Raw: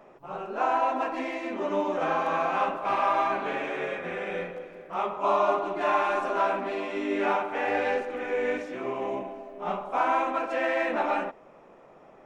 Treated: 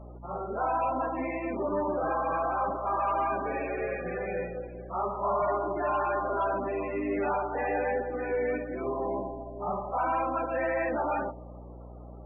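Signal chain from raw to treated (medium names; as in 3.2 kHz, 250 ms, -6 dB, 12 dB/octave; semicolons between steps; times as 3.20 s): distance through air 150 m; feedback echo behind a low-pass 95 ms, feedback 68%, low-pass 600 Hz, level -18.5 dB; saturation -25.5 dBFS, distortion -11 dB; loudest bins only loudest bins 32; hum 60 Hz, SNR 15 dB; trim +2 dB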